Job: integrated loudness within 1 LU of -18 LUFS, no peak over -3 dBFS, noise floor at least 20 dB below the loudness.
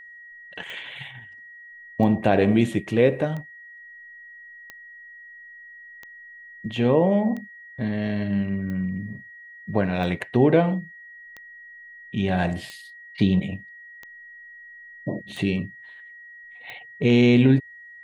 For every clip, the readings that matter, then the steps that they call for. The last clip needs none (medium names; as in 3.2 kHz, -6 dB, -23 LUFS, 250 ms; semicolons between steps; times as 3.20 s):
clicks found 14; steady tone 1.9 kHz; tone level -42 dBFS; loudness -23.0 LUFS; peak level -4.5 dBFS; loudness target -18.0 LUFS
-> de-click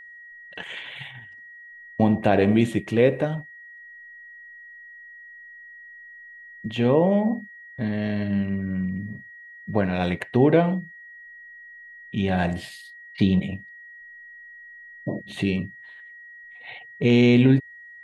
clicks found 1; steady tone 1.9 kHz; tone level -42 dBFS
-> band-stop 1.9 kHz, Q 30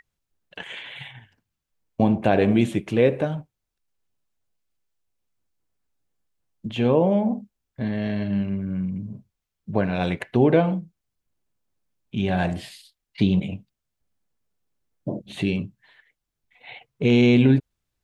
steady tone not found; loudness -22.5 LUFS; peak level -5.0 dBFS; loudness target -18.0 LUFS
-> trim +4.5 dB; peak limiter -3 dBFS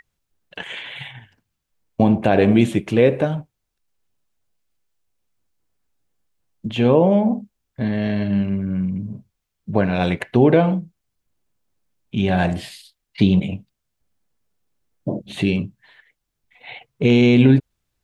loudness -18.5 LUFS; peak level -3.0 dBFS; noise floor -78 dBFS